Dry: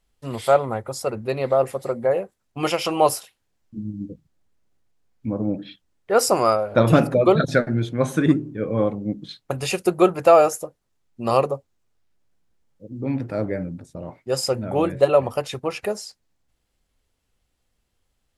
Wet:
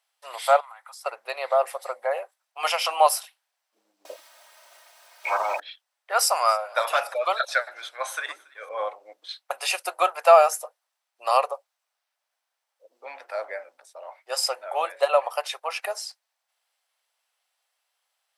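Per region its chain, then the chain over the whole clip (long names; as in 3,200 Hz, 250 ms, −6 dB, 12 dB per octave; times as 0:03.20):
0:00.60–0:01.06: high-pass filter 970 Hz 24 dB per octave + downward compressor 8 to 1, threshold −42 dBFS
0:04.05–0:05.60: low-shelf EQ 490 Hz +5 dB + comb filter 3.2 ms, depth 66% + every bin compressed towards the loudest bin 4 to 1
0:06.11–0:08.69: high-pass filter 770 Hz 6 dB per octave + delay with a high-pass on its return 279 ms, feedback 56%, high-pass 1,500 Hz, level −23.5 dB
whole clip: Butterworth high-pass 640 Hz 36 dB per octave; notch filter 6,900 Hz, Q 9.3; level +2 dB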